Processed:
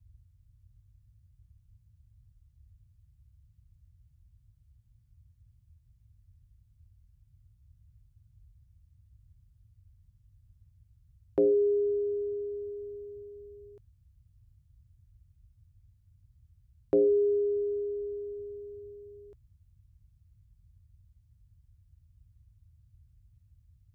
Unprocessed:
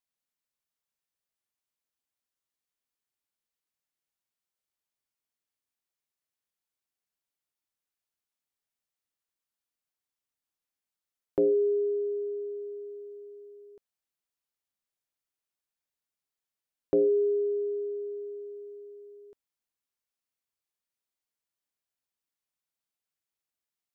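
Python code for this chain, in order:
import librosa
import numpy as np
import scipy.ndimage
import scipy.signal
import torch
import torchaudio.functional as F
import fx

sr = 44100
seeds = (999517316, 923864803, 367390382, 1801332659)

y = fx.dmg_noise_band(x, sr, seeds[0], low_hz=33.0, high_hz=110.0, level_db=-60.0)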